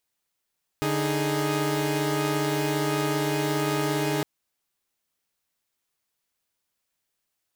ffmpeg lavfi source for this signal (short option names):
-f lavfi -i "aevalsrc='0.0531*((2*mod(146.83*t,1)-1)+(2*mod(311.13*t,1)-1)+(2*mod(415.3*t,1)-1))':d=3.41:s=44100"